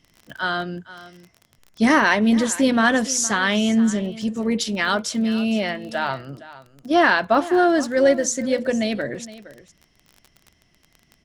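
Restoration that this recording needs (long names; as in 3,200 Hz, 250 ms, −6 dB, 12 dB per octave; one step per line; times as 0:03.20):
click removal
echo removal 464 ms −17 dB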